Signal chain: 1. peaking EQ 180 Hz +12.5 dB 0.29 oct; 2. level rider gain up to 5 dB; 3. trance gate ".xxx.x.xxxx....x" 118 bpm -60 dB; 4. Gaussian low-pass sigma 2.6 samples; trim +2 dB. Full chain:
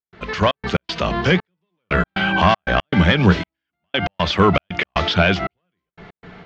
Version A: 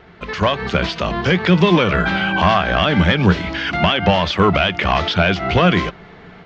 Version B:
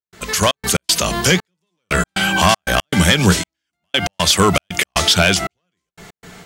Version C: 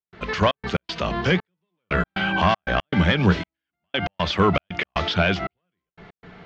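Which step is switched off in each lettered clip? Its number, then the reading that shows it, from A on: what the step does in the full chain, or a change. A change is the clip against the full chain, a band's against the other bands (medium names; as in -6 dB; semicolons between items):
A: 3, crest factor change -2.5 dB; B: 4, 4 kHz band +7.0 dB; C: 2, loudness change -4.0 LU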